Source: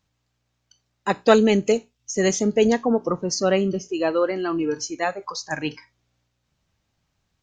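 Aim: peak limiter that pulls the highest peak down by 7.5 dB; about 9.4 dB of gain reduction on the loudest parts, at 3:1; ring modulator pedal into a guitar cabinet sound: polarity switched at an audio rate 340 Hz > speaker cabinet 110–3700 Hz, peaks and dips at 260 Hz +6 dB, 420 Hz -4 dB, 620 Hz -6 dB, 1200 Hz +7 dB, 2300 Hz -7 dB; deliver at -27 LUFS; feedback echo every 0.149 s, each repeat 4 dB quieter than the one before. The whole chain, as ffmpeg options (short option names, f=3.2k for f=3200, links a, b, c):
-af "acompressor=threshold=-23dB:ratio=3,alimiter=limit=-18.5dB:level=0:latency=1,aecho=1:1:149|298|447|596|745|894|1043|1192|1341:0.631|0.398|0.25|0.158|0.0994|0.0626|0.0394|0.0249|0.0157,aeval=exprs='val(0)*sgn(sin(2*PI*340*n/s))':c=same,highpass=110,equalizer=f=260:t=q:w=4:g=6,equalizer=f=420:t=q:w=4:g=-4,equalizer=f=620:t=q:w=4:g=-6,equalizer=f=1.2k:t=q:w=4:g=7,equalizer=f=2.3k:t=q:w=4:g=-7,lowpass=f=3.7k:w=0.5412,lowpass=f=3.7k:w=1.3066,volume=1.5dB"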